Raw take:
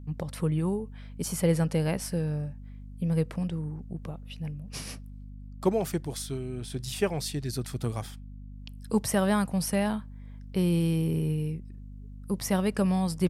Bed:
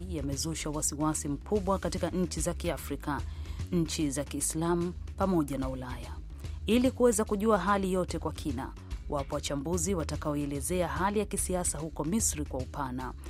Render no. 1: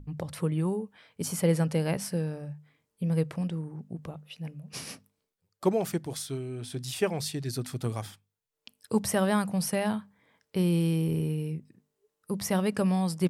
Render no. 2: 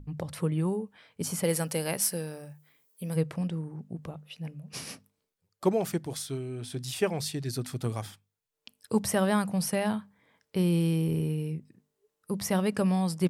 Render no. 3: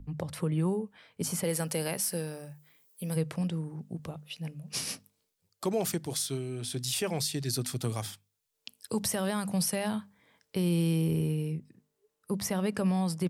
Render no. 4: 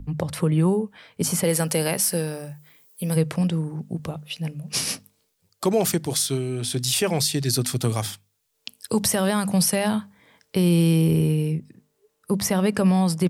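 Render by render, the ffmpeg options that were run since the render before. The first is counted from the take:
-af "bandreject=f=50:t=h:w=6,bandreject=f=100:t=h:w=6,bandreject=f=150:t=h:w=6,bandreject=f=200:t=h:w=6,bandreject=f=250:t=h:w=6"
-filter_complex "[0:a]asplit=3[s0][s1][s2];[s0]afade=t=out:st=1.43:d=0.02[s3];[s1]aemphasis=mode=production:type=bsi,afade=t=in:st=1.43:d=0.02,afade=t=out:st=3.15:d=0.02[s4];[s2]afade=t=in:st=3.15:d=0.02[s5];[s3][s4][s5]amix=inputs=3:normalize=0"
-filter_complex "[0:a]acrossover=split=120|3000[s0][s1][s2];[s2]dynaudnorm=f=360:g=17:m=2.24[s3];[s0][s1][s3]amix=inputs=3:normalize=0,alimiter=limit=0.1:level=0:latency=1:release=63"
-af "volume=2.82"

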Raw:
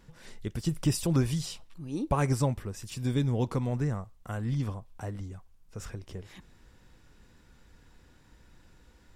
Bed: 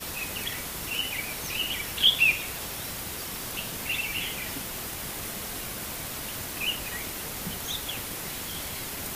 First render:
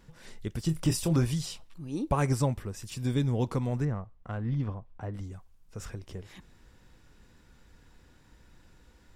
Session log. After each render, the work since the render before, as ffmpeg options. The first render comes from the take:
-filter_complex "[0:a]asettb=1/sr,asplit=3[s0][s1][s2];[s0]atrim=end=0.664[s3];[s1]atrim=start=0.66:end=1.25,asetpts=PTS-STARTPTS,afade=t=in:d=0.004:c=qsin,afade=t=out:st=0.586:d=0.004:c=qsin,asplit=2[s4][s5];[s5]adelay=25,volume=0.355[s6];[s4][s6]amix=inputs=2:normalize=0,atrim=end_sample=26019[s7];[s2]atrim=start=1.246[s8];[s3][s7]acrossfade=d=0.004:c1=hsin:c2=qsin[s9];[s9][s8]acrossfade=d=0.004:c1=qsin:c2=hsin,asettb=1/sr,asplit=3[s10][s11][s12];[s10]atrim=end=3.854[s13];[s11]atrim=start=3.85:end=5.14,asetpts=PTS-STARTPTS,afade=t=in:d=0.004:c=qsin,afade=t=out:st=1.286:d=0.004:c=qsin,adynamicsmooth=sensitivity=2.5:basefreq=2500[s14];[s12]atrim=start=5.136[s15];[s13][s14]acrossfade=d=0.004:c1=hsin:c2=qsin[s16];[s16][s15]acrossfade=d=0.004:c1=qsin:c2=hsin"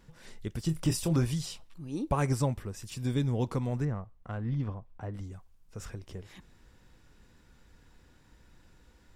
-af "volume=0.841"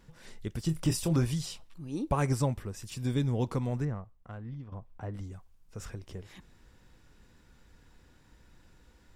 -filter_complex "[0:a]asplit=2[s0][s1];[s0]atrim=end=4.72,asetpts=PTS-STARTPTS,afade=t=out:st=3.7:d=1.02:silence=0.188365[s2];[s1]atrim=start=4.72,asetpts=PTS-STARTPTS,afade=t=in:d=0.004:c=hsin:silence=0.188365[s3];[s2][s3]concat=n=2:v=0:a=1"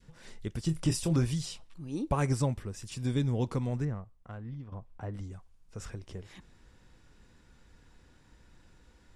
-af "lowpass=f=11000:w=0.5412,lowpass=f=11000:w=1.3066,adynamicequalizer=threshold=0.00316:dfrequency=880:dqfactor=0.84:tfrequency=880:tqfactor=0.84:attack=5:release=100:ratio=0.375:range=1.5:mode=cutabove:tftype=bell"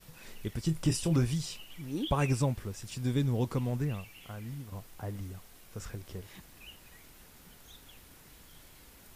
-filter_complex "[1:a]volume=0.0794[s0];[0:a][s0]amix=inputs=2:normalize=0"

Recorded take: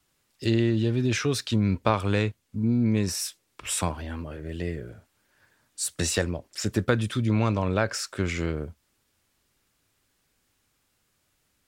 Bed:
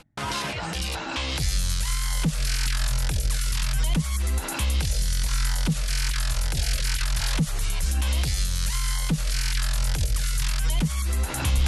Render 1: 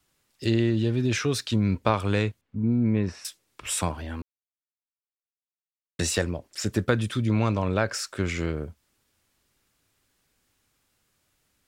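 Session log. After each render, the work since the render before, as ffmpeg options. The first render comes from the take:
-filter_complex "[0:a]asettb=1/sr,asplit=3[s0][s1][s2];[s0]atrim=end=2.414[s3];[s1]atrim=start=2.41:end=3.25,asetpts=PTS-STARTPTS,afade=t=in:d=0.004:c=qsin,afade=t=out:st=0.836:d=0.004:c=qsin,lowpass=2300[s4];[s2]atrim=start=3.246[s5];[s3][s4]acrossfade=d=0.004:c1=hsin:c2=qsin[s6];[s6][s5]acrossfade=d=0.004:c1=qsin:c2=hsin,asplit=3[s7][s8][s9];[s7]atrim=end=4.22,asetpts=PTS-STARTPTS,afade=t=out:st=4.216:d=0.004:c=hsin[s10];[s8]atrim=start=4.22:end=5.99,asetpts=PTS-STARTPTS,volume=0[s11];[s9]atrim=start=5.99,asetpts=PTS-STARTPTS,afade=t=in:d=0.004:c=hsin[s12];[s10][s11][s12]concat=n=3:v=0:a=1"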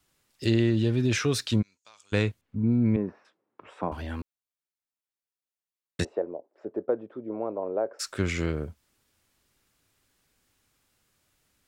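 -filter_complex "[0:a]asplit=3[s0][s1][s2];[s0]afade=t=out:st=1.61:d=0.02[s3];[s1]bandpass=f=6700:t=q:w=5.8,afade=t=in:st=1.61:d=0.02,afade=t=out:st=2.12:d=0.02[s4];[s2]afade=t=in:st=2.12:d=0.02[s5];[s3][s4][s5]amix=inputs=3:normalize=0,asettb=1/sr,asplit=3[s6][s7][s8];[s6]atrim=end=2.964[s9];[s7]atrim=start=2.96:end=3.92,asetpts=PTS-STARTPTS,afade=t=in:d=0.004:c=qsin,afade=t=out:st=0.956:d=0.004:c=qsin,asuperpass=centerf=470:order=4:qfactor=0.53[s10];[s8]atrim=start=3.916[s11];[s9][s10]acrossfade=d=0.004:c1=hsin:c2=qsin[s12];[s12][s11]acrossfade=d=0.004:c1=qsin:c2=hsin,asplit=3[s13][s14][s15];[s13]afade=t=out:st=6.03:d=0.02[s16];[s14]asuperpass=centerf=520:order=4:qfactor=1.2,afade=t=in:st=6.03:d=0.02,afade=t=out:st=7.99:d=0.02[s17];[s15]afade=t=in:st=7.99:d=0.02[s18];[s16][s17][s18]amix=inputs=3:normalize=0"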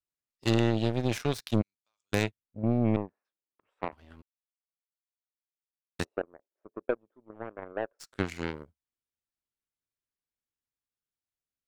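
-af "aeval=exprs='0.355*(cos(1*acos(clip(val(0)/0.355,-1,1)))-cos(1*PI/2))+0.0501*(cos(3*acos(clip(val(0)/0.355,-1,1)))-cos(3*PI/2))+0.00794*(cos(4*acos(clip(val(0)/0.355,-1,1)))-cos(4*PI/2))+0.0501*(cos(5*acos(clip(val(0)/0.355,-1,1)))-cos(5*PI/2))+0.0631*(cos(7*acos(clip(val(0)/0.355,-1,1)))-cos(7*PI/2))':c=same"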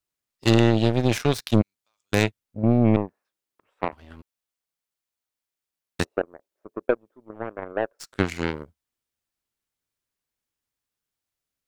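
-af "volume=2.37,alimiter=limit=0.891:level=0:latency=1"

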